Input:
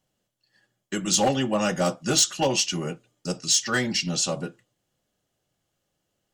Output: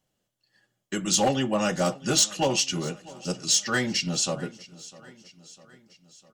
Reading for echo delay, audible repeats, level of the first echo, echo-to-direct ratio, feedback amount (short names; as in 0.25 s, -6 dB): 0.652 s, 3, -20.5 dB, -19.0 dB, 57%